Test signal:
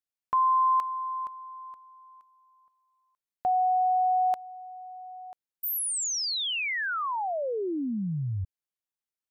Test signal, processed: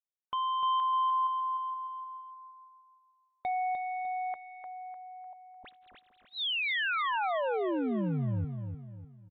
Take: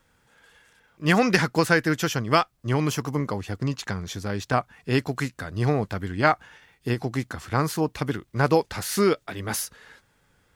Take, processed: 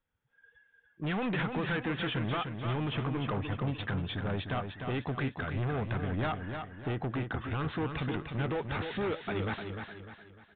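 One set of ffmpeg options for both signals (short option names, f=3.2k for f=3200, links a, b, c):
-filter_complex "[0:a]afftdn=nr=22:nf=-47,acompressor=threshold=-30dB:ratio=4:attack=54:release=40:knee=1:detection=rms,asoftclip=type=hard:threshold=-29.5dB,asplit=2[a][b];[b]aecho=0:1:301|602|903|1204|1505:0.473|0.189|0.0757|0.0303|0.0121[c];[a][c]amix=inputs=2:normalize=0,aresample=8000,aresample=44100"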